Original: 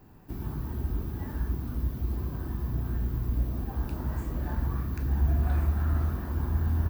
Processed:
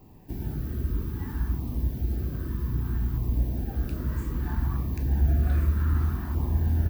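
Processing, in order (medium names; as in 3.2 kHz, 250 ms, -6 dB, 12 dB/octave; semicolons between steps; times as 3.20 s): LFO notch saw down 0.63 Hz 470–1600 Hz; trim +2.5 dB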